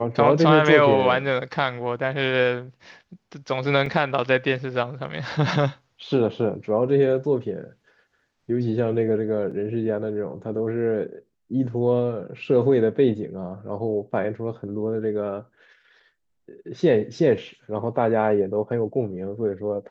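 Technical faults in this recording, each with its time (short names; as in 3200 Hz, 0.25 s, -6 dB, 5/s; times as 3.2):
3.86 gap 2.9 ms
9.51 gap 4.7 ms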